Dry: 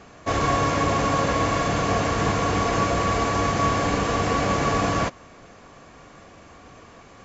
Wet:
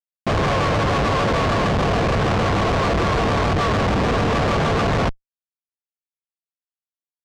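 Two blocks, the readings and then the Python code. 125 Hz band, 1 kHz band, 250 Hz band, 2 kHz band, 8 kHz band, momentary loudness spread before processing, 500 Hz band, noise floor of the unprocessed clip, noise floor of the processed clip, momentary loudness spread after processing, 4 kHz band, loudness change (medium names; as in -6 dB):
+5.5 dB, +1.5 dB, +3.0 dB, +3.0 dB, no reading, 1 LU, +4.0 dB, -48 dBFS, under -85 dBFS, 1 LU, +3.5 dB, +3.0 dB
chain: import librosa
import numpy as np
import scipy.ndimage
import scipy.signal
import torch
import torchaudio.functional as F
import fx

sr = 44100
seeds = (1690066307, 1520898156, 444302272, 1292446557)

y = fx.peak_eq(x, sr, hz=290.0, db=-10.5, octaves=0.46)
y = fx.rev_spring(y, sr, rt60_s=1.2, pass_ms=(34, 56), chirp_ms=80, drr_db=16.0)
y = fx.schmitt(y, sr, flips_db=-24.5)
y = fx.air_absorb(y, sr, metres=130.0)
y = fx.vibrato_shape(y, sr, shape='saw_down', rate_hz=6.7, depth_cents=100.0)
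y = y * 10.0 ** (6.5 / 20.0)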